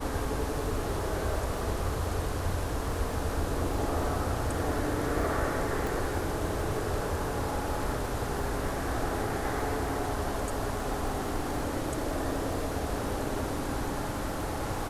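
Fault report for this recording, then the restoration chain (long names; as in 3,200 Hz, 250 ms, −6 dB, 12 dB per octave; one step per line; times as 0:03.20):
surface crackle 32 per second −38 dBFS
0:05.87: click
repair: click removal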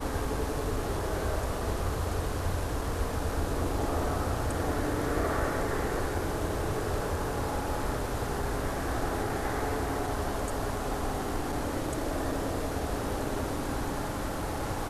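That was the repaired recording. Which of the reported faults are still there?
none of them is left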